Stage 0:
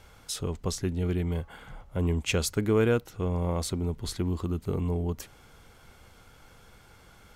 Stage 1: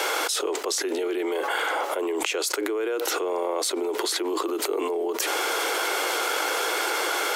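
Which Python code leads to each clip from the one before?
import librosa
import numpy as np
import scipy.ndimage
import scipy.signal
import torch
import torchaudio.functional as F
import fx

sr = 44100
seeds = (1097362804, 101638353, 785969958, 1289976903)

y = scipy.signal.sosfilt(scipy.signal.butter(12, 320.0, 'highpass', fs=sr, output='sos'), x)
y = fx.env_flatten(y, sr, amount_pct=100)
y = y * 10.0 ** (-4.0 / 20.0)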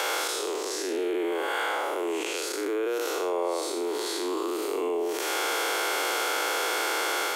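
y = fx.spec_blur(x, sr, span_ms=200.0)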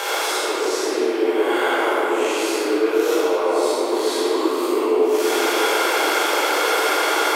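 y = fx.room_shoebox(x, sr, seeds[0], volume_m3=200.0, walls='hard', distance_m=1.2)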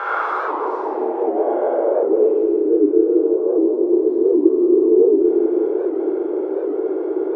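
y = fx.filter_sweep_lowpass(x, sr, from_hz=1300.0, to_hz=370.0, start_s=0.18, end_s=2.67, q=4.6)
y = fx.record_warp(y, sr, rpm=78.0, depth_cents=160.0)
y = y * 10.0 ** (-4.0 / 20.0)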